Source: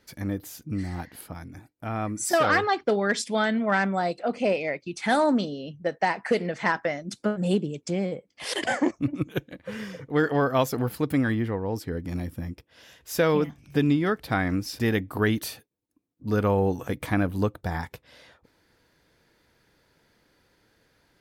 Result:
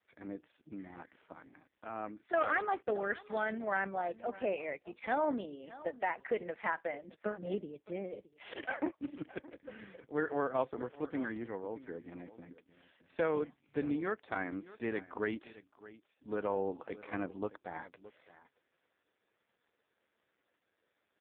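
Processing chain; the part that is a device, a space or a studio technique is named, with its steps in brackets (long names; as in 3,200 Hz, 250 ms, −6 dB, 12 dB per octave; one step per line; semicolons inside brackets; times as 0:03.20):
satellite phone (band-pass filter 310–3,200 Hz; single-tap delay 618 ms −17.5 dB; level −8.5 dB; AMR narrowband 4.75 kbit/s 8,000 Hz)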